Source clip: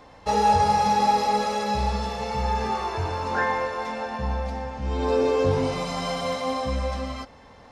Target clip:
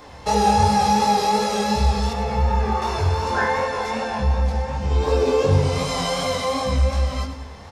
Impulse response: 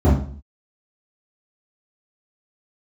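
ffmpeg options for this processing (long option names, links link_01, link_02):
-filter_complex "[0:a]asplit=2[link_01][link_02];[link_02]lowshelf=frequency=230:gain=7.5[link_03];[1:a]atrim=start_sample=2205[link_04];[link_03][link_04]afir=irnorm=-1:irlink=0,volume=-42dB[link_05];[link_01][link_05]amix=inputs=2:normalize=0,flanger=delay=19.5:depth=5.6:speed=2.7,asettb=1/sr,asplit=3[link_06][link_07][link_08];[link_06]atrim=end=2.134[link_09];[link_07]atrim=start=2.13:end=2.82,asetpts=PTS-STARTPTS,afade=type=in:duration=0.004:curve=qsin,afade=type=out:start_time=0.686:duration=0.004:curve=qsin,acrossover=split=2600[link_10][link_11];[link_11]acompressor=threshold=-54dB:ratio=4:attack=1:release=60[link_12];[link_10][link_12]amix=inputs=2:normalize=0[link_13];[link_08]atrim=start=2.816[link_14];[link_09][link_13]acrossfade=duration=0.004:curve1=hsin:curve2=qsin[link_15];[link_15][link_14]acrossfade=duration=0.004:curve1=qsin:curve2=hsin,aecho=1:1:100|200|300|400:0.251|0.105|0.0443|0.0186,asplit=2[link_16][link_17];[link_17]acompressor=threshold=-33dB:ratio=6,volume=2dB[link_18];[link_16][link_18]amix=inputs=2:normalize=0,highshelf=frequency=5300:gain=9.5,asettb=1/sr,asplit=3[link_19][link_20][link_21];[link_19]atrim=end=4.814[link_22];[link_20]atrim=start=4.81:end=5.4,asetpts=PTS-STARTPTS,afade=type=in:duration=0.004:curve=qsin,afade=type=out:start_time=0.586:duration=0.004:curve=qsin,aeval=exprs='sgn(val(0))*max(abs(val(0))-0.00224,0)':channel_layout=same[link_23];[link_21]atrim=start=5.396[link_24];[link_22][link_23]acrossfade=duration=0.004:curve1=hsin:curve2=qsin[link_25];[link_25][link_24]acrossfade=duration=0.004:curve1=qsin:curve2=hsin,volume=2dB"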